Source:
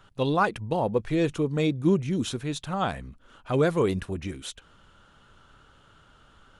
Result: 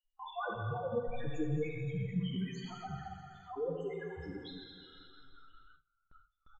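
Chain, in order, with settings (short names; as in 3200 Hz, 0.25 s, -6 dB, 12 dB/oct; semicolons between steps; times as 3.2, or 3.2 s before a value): random spectral dropouts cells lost 51%; soft clip -24.5 dBFS, distortion -9 dB; loudest bins only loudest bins 2; 2.98–3.93 tilt +2.5 dB/oct; tapped delay 81/208 ms -14/-11.5 dB; Schroeder reverb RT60 2 s, combs from 29 ms, DRR 0 dB; chorus voices 4, 1.4 Hz, delay 10 ms, depth 3 ms; gate with hold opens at -54 dBFS; mismatched tape noise reduction encoder only; gain +1 dB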